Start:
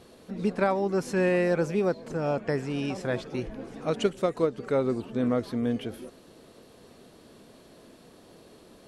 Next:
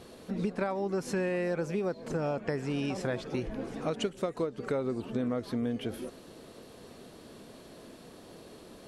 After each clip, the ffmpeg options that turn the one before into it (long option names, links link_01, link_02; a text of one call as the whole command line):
ffmpeg -i in.wav -af "acompressor=threshold=-31dB:ratio=6,volume=2.5dB" out.wav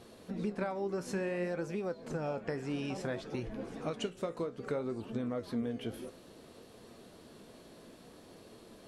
ffmpeg -i in.wav -af "flanger=delay=8.7:depth=9.1:regen=65:speed=0.58:shape=sinusoidal" out.wav